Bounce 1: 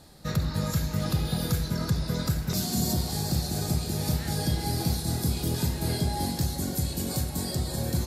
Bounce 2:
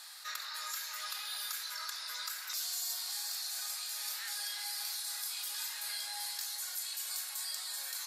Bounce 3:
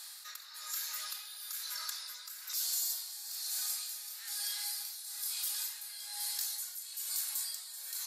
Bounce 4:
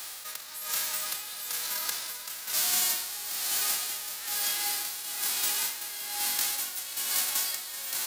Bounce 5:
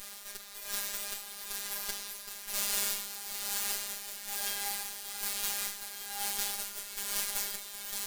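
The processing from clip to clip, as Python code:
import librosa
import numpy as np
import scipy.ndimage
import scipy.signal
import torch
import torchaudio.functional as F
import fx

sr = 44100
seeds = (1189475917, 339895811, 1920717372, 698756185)

y1 = scipy.signal.sosfilt(scipy.signal.butter(4, 1200.0, 'highpass', fs=sr, output='sos'), x)
y1 = fx.env_flatten(y1, sr, amount_pct=50)
y1 = F.gain(torch.from_numpy(y1), -5.5).numpy()
y2 = fx.high_shelf(y1, sr, hz=4500.0, db=10.5)
y2 = y2 * (1.0 - 0.67 / 2.0 + 0.67 / 2.0 * np.cos(2.0 * np.pi * 1.1 * (np.arange(len(y2)) / sr)))
y2 = F.gain(torch.from_numpy(y2), -4.0).numpy()
y3 = fx.envelope_flatten(y2, sr, power=0.3)
y3 = F.gain(torch.from_numpy(y3), 8.0).numpy()
y4 = fx.lower_of_two(y3, sr, delay_ms=8.5)
y4 = fx.robotise(y4, sr, hz=202.0)
y4 = F.gain(torch.from_numpy(y4), -1.5).numpy()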